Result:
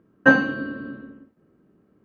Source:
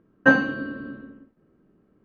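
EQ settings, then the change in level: high-pass 57 Hz; +1.5 dB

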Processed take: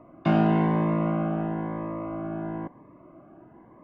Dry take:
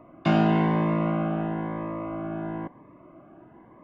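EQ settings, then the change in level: treble shelf 3 kHz -11 dB; 0.0 dB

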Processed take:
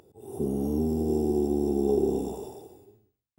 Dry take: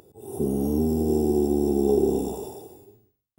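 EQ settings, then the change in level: treble shelf 8.5 kHz -7 dB; -3.5 dB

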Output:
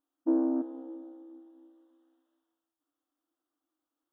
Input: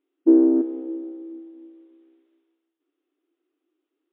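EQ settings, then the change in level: static phaser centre 950 Hz, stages 4; 0.0 dB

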